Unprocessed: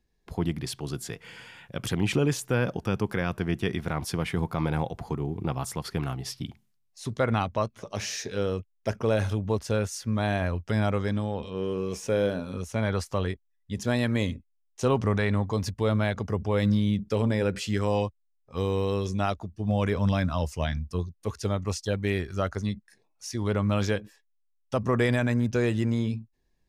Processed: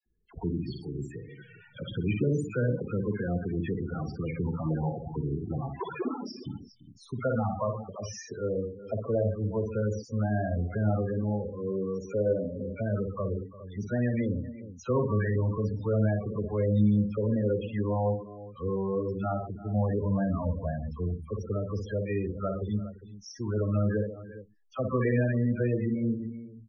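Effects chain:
0:05.65–0:06.26: three sine waves on the formant tracks
all-pass dispersion lows, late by 61 ms, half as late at 1,100 Hz
on a send: multi-tap delay 57/125/129/342/407 ms −5/−13.5/−13.5/−17.5/−14.5 dB
on the sum: spectral peaks only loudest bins 16
level −3 dB

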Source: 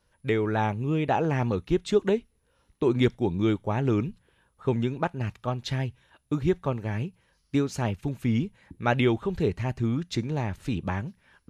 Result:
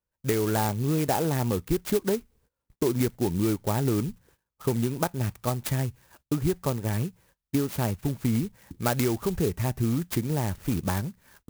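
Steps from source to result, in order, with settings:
noise gate −60 dBFS, range −22 dB
downward compressor, threshold −24 dBFS, peak gain reduction 8 dB
converter with an unsteady clock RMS 0.081 ms
level +3 dB

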